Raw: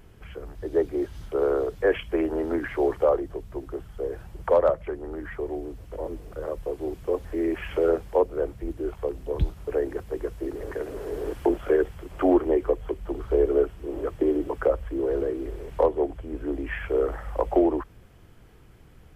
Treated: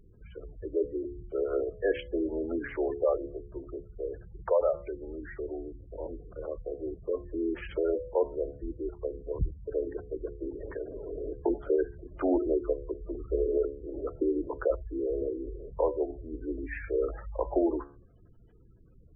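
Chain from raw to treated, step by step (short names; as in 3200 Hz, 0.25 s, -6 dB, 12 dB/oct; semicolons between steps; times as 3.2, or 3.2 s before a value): notch 760 Hz, Q 15; de-hum 70.96 Hz, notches 29; spectral gate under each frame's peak -20 dB strong; gain -5 dB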